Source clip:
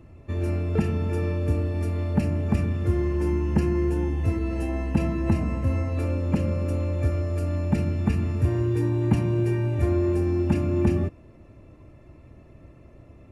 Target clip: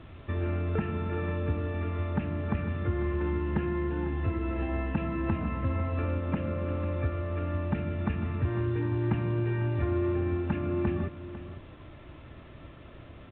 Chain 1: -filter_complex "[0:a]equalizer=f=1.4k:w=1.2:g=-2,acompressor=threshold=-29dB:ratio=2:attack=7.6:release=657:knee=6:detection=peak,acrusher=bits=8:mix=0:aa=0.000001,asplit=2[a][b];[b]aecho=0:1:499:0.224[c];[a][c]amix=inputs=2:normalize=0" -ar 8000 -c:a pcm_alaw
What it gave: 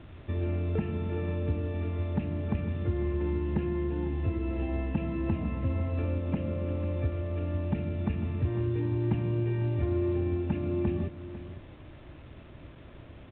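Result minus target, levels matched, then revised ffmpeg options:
1000 Hz band -6.0 dB
-filter_complex "[0:a]equalizer=f=1.4k:w=1.2:g=8.5,acompressor=threshold=-29dB:ratio=2:attack=7.6:release=657:knee=6:detection=peak,acrusher=bits=8:mix=0:aa=0.000001,asplit=2[a][b];[b]aecho=0:1:499:0.224[c];[a][c]amix=inputs=2:normalize=0" -ar 8000 -c:a pcm_alaw

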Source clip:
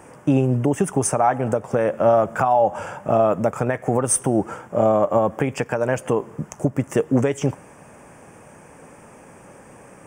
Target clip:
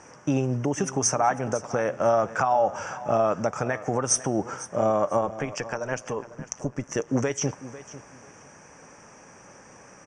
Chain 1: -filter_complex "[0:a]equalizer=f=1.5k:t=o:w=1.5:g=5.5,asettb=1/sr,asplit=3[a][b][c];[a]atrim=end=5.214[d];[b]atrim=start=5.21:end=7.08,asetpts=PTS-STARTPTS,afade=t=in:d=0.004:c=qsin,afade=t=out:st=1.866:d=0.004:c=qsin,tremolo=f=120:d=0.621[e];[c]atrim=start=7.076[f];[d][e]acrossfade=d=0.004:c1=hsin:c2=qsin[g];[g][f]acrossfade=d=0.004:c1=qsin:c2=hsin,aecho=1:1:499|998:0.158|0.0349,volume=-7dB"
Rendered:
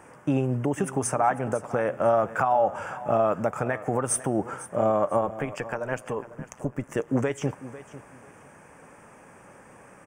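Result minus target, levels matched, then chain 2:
8000 Hz band -5.5 dB
-filter_complex "[0:a]lowpass=f=5.8k:t=q:w=9.8,equalizer=f=1.5k:t=o:w=1.5:g=5.5,asettb=1/sr,asplit=3[a][b][c];[a]atrim=end=5.214[d];[b]atrim=start=5.21:end=7.08,asetpts=PTS-STARTPTS,afade=t=in:d=0.004:c=qsin,afade=t=out:st=1.866:d=0.004:c=qsin,tremolo=f=120:d=0.621[e];[c]atrim=start=7.076[f];[d][e]acrossfade=d=0.004:c1=hsin:c2=qsin[g];[g][f]acrossfade=d=0.004:c1=qsin:c2=hsin,aecho=1:1:499|998:0.158|0.0349,volume=-7dB"

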